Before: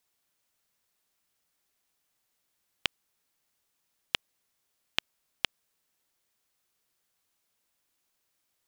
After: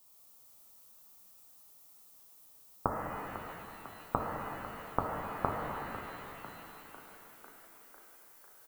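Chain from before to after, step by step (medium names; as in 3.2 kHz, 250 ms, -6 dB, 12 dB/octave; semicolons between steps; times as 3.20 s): Chebyshev low-pass 1.3 kHz, order 6; peaking EQ 360 Hz -10 dB 0.2 oct; on a send: frequency-shifting echo 499 ms, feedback 65%, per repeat +54 Hz, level -15 dB; on the sum: added noise violet -73 dBFS; flange 0.27 Hz, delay 7.4 ms, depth 5.2 ms, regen -67%; pitch-shifted reverb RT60 3.2 s, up +7 st, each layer -8 dB, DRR -1.5 dB; trim +15 dB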